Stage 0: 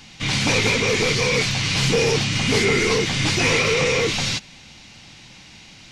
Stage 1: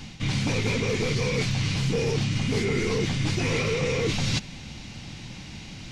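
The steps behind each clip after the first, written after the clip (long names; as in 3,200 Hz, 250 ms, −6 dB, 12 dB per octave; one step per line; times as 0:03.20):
low-shelf EQ 390 Hz +11 dB
reversed playback
downward compressor 6 to 1, threshold −23 dBFS, peak gain reduction 13.5 dB
reversed playback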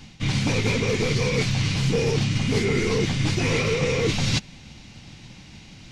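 expander for the loud parts 1.5 to 1, over −40 dBFS
level +4 dB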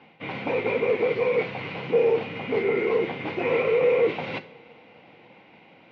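loudspeaker in its box 480–2,100 Hz, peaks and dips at 500 Hz +5 dB, 1,200 Hz −6 dB, 1,700 Hz −10 dB
coupled-rooms reverb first 0.45 s, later 3.5 s, from −20 dB, DRR 11 dB
level +4 dB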